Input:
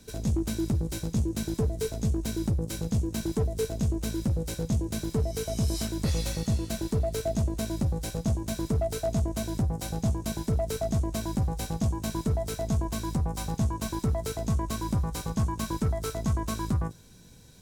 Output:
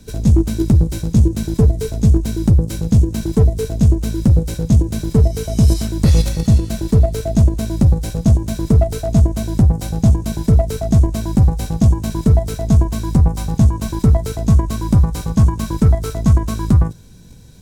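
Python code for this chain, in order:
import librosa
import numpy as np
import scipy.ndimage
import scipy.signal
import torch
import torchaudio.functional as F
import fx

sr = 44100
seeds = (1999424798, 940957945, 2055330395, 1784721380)

p1 = fx.low_shelf(x, sr, hz=250.0, db=9.0)
p2 = fx.level_steps(p1, sr, step_db=22)
p3 = p1 + (p2 * 10.0 ** (2.5 / 20.0))
y = p3 * 10.0 ** (3.5 / 20.0)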